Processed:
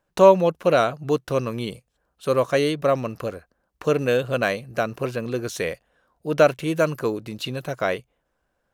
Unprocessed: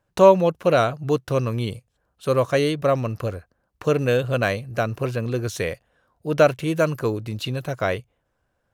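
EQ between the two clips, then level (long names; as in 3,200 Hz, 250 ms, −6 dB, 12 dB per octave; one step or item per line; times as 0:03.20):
parametric band 100 Hz −12.5 dB 0.63 octaves
0.0 dB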